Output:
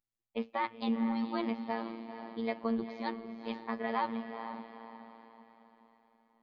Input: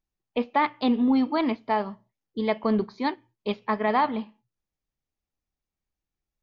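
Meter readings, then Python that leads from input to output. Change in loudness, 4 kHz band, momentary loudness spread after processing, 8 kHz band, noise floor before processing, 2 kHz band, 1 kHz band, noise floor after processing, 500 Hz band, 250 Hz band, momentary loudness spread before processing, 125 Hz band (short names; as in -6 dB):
-10.5 dB, -9.5 dB, 16 LU, n/a, under -85 dBFS, -9.0 dB, -10.0 dB, under -85 dBFS, -10.0 dB, -9.0 dB, 12 LU, -10.5 dB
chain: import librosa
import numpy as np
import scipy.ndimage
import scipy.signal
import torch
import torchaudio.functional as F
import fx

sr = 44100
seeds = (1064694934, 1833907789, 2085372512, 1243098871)

y = fx.echo_diffused(x, sr, ms=464, feedback_pct=42, wet_db=-9)
y = fx.robotise(y, sr, hz=114.0)
y = F.gain(torch.from_numpy(y), -7.5).numpy()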